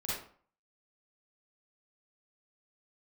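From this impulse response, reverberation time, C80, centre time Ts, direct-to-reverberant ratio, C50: 0.50 s, 4.5 dB, 64 ms, -8.5 dB, -3.0 dB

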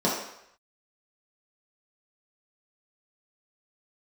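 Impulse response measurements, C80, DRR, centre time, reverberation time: 6.0 dB, -6.5 dB, 49 ms, 0.75 s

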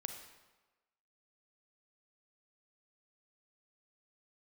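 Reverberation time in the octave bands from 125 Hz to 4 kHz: 1.0, 1.1, 1.2, 1.2, 1.1, 0.90 s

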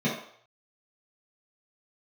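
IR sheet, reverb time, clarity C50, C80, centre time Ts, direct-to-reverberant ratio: 0.60 s, 4.0 dB, 8.0 dB, 40 ms, -9.0 dB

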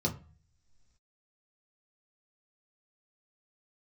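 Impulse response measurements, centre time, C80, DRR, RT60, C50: 12 ms, 19.5 dB, -2.0 dB, not exponential, 14.5 dB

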